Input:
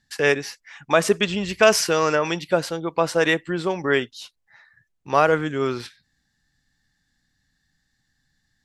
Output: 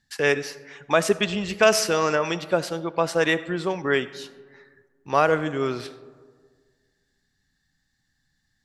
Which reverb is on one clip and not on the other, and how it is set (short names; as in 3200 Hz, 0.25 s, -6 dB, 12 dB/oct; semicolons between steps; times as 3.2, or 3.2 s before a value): digital reverb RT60 1.7 s, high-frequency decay 0.35×, pre-delay 30 ms, DRR 16 dB; gain -2 dB